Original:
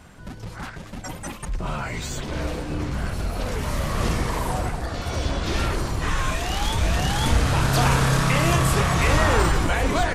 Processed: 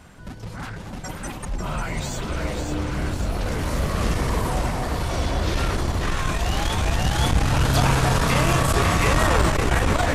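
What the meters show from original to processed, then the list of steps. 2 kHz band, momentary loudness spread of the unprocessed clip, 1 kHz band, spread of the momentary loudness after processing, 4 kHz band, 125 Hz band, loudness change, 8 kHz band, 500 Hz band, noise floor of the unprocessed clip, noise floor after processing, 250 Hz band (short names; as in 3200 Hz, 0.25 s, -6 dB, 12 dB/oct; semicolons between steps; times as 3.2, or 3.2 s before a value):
0.0 dB, 15 LU, +0.5 dB, 14 LU, 0.0 dB, +0.5 dB, +0.5 dB, 0.0 dB, +1.0 dB, -39 dBFS, -35 dBFS, +1.0 dB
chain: on a send: echo with dull and thin repeats by turns 0.272 s, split 890 Hz, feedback 78%, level -3 dB; on the sum: core saturation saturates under 110 Hz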